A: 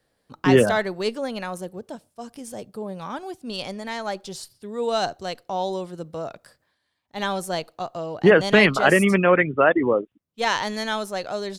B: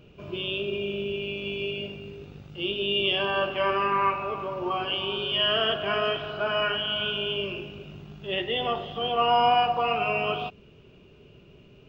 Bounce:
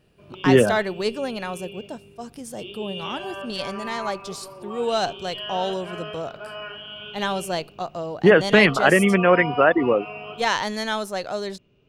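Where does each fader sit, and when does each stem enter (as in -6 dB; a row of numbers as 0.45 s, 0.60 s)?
+0.5 dB, -9.5 dB; 0.00 s, 0.00 s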